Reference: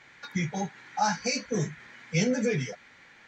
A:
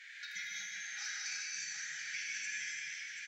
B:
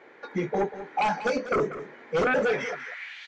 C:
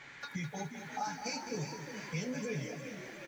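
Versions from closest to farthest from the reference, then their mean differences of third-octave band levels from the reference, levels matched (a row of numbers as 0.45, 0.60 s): B, C, A; 7.5, 11.0, 16.5 dB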